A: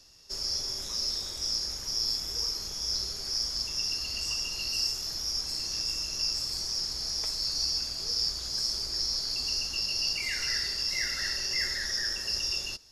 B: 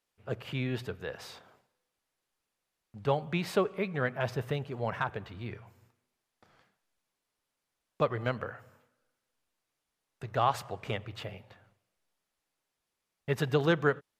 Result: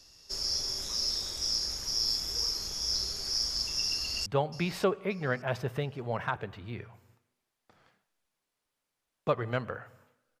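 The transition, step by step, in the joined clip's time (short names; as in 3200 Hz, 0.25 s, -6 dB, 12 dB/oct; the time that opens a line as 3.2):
A
3.94–4.26 echo throw 0.58 s, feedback 25%, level -15 dB
4.26 switch to B from 2.99 s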